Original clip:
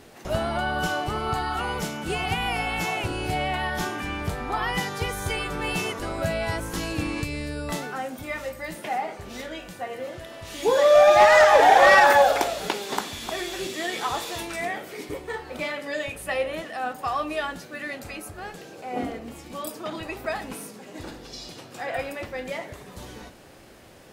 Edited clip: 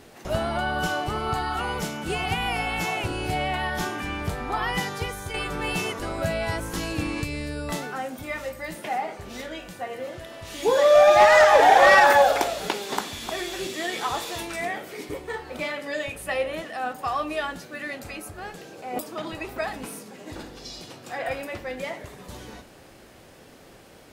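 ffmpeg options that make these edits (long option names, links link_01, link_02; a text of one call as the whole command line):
ffmpeg -i in.wav -filter_complex "[0:a]asplit=3[link_01][link_02][link_03];[link_01]atrim=end=5.34,asetpts=PTS-STARTPTS,afade=type=out:start_time=4.89:duration=0.45:silence=0.421697[link_04];[link_02]atrim=start=5.34:end=18.992,asetpts=PTS-STARTPTS,afade=type=in:duration=0.004:curve=hsin:silence=0.421697[link_05];[link_03]atrim=start=19.668[link_06];[link_04][link_05]concat=n=2:v=0:a=1[link_07];[link_07][link_06]acrossfade=duration=0.004:curve1=hsin:curve2=hsin" out.wav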